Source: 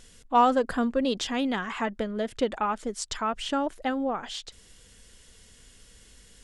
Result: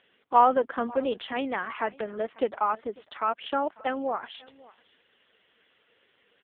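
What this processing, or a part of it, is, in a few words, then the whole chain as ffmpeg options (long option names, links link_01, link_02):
satellite phone: -filter_complex "[0:a]asplit=3[link_01][link_02][link_03];[link_01]afade=type=out:start_time=3.1:duration=0.02[link_04];[link_02]equalizer=frequency=66:width=3.1:gain=-5,afade=type=in:start_time=3.1:duration=0.02,afade=type=out:start_time=3.81:duration=0.02[link_05];[link_03]afade=type=in:start_time=3.81:duration=0.02[link_06];[link_04][link_05][link_06]amix=inputs=3:normalize=0,highpass=390,lowpass=3100,aecho=1:1:545:0.0708,volume=2.5dB" -ar 8000 -c:a libopencore_amrnb -b:a 5150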